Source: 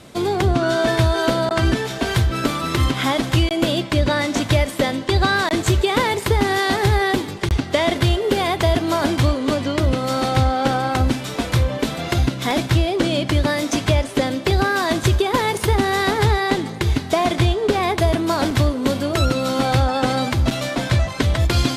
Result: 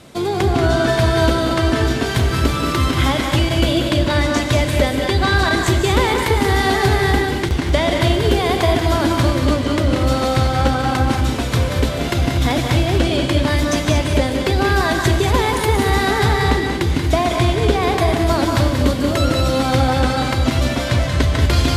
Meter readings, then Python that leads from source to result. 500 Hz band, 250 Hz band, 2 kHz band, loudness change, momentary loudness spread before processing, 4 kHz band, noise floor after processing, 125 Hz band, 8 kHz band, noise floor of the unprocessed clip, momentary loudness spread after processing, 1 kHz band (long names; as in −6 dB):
+2.0 dB, +2.5 dB, +2.5 dB, +2.5 dB, 4 LU, +2.0 dB, −22 dBFS, +2.5 dB, +2.0 dB, −30 dBFS, 3 LU, +2.0 dB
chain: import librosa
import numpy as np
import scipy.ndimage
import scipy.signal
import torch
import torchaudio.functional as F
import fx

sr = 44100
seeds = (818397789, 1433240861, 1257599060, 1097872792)

y = x + 10.0 ** (-7.0 / 20.0) * np.pad(x, (int(183 * sr / 1000.0), 0))[:len(x)]
y = fx.rev_gated(y, sr, seeds[0], gate_ms=260, shape='rising', drr_db=4.0)